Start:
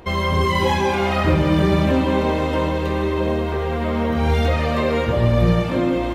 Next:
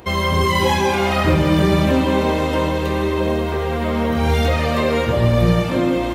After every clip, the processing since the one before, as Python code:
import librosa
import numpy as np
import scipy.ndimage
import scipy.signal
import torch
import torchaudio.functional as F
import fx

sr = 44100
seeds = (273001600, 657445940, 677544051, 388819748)

y = scipy.signal.sosfilt(scipy.signal.butter(2, 55.0, 'highpass', fs=sr, output='sos'), x)
y = fx.high_shelf(y, sr, hz=5400.0, db=8.0)
y = y * 10.0 ** (1.5 / 20.0)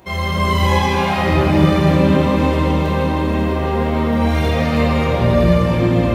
y = fx.room_shoebox(x, sr, seeds[0], volume_m3=210.0, walls='hard', distance_m=1.1)
y = y * 10.0 ** (-7.0 / 20.0)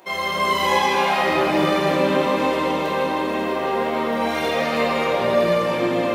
y = scipy.signal.sosfilt(scipy.signal.butter(2, 380.0, 'highpass', fs=sr, output='sos'), x)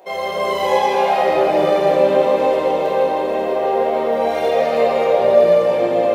y = fx.band_shelf(x, sr, hz=570.0, db=11.5, octaves=1.2)
y = y * 10.0 ** (-4.0 / 20.0)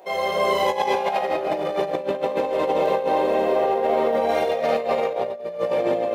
y = fx.over_compress(x, sr, threshold_db=-18.0, ratio=-0.5)
y = y * 10.0 ** (-3.5 / 20.0)